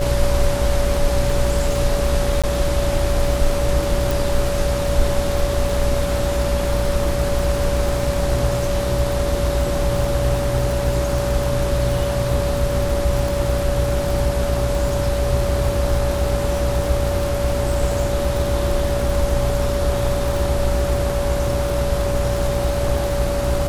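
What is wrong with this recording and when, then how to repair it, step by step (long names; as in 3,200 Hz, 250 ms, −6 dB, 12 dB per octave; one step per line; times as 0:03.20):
mains buzz 60 Hz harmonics 31 −24 dBFS
surface crackle 58 per second −23 dBFS
whistle 570 Hz −22 dBFS
0:02.42–0:02.44: drop-out 16 ms
0:04.11: click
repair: click removal
hum removal 60 Hz, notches 31
notch filter 570 Hz, Q 30
repair the gap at 0:02.42, 16 ms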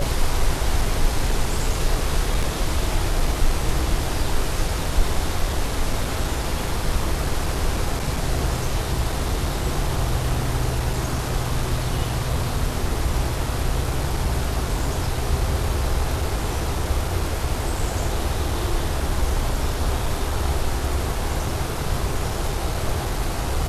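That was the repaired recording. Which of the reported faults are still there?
none of them is left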